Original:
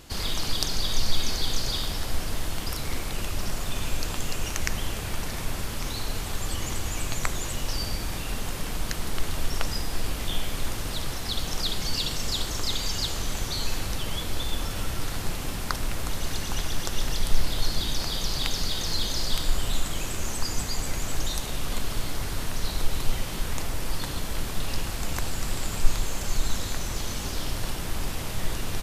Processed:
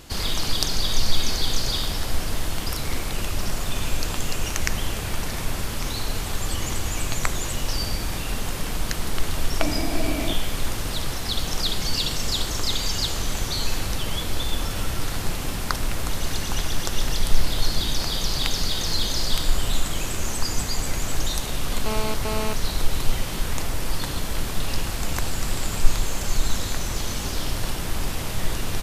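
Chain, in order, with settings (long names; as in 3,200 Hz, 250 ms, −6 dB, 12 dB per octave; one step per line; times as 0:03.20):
0:09.60–0:10.33: hollow resonant body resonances 300/640/2,300 Hz, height 14 dB
0:21.86–0:22.53: phone interference −32 dBFS
level +3.5 dB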